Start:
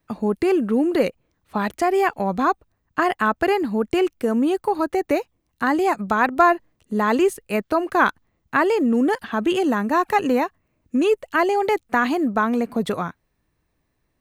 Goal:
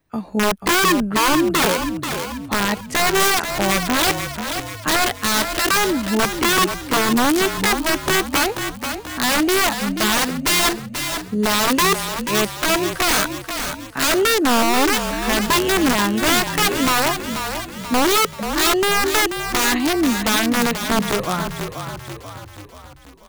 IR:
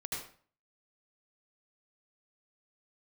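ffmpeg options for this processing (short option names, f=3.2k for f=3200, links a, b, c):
-filter_complex "[0:a]atempo=0.61,aeval=exprs='(mod(5.31*val(0)+1,2)-1)/5.31':c=same,asplit=7[a][b][c][d][e][f][g];[b]adelay=485,afreqshift=-35,volume=-8dB[h];[c]adelay=970,afreqshift=-70,volume=-13.7dB[i];[d]adelay=1455,afreqshift=-105,volume=-19.4dB[j];[e]adelay=1940,afreqshift=-140,volume=-25dB[k];[f]adelay=2425,afreqshift=-175,volume=-30.7dB[l];[g]adelay=2910,afreqshift=-210,volume=-36.4dB[m];[a][h][i][j][k][l][m]amix=inputs=7:normalize=0,volume=2.5dB"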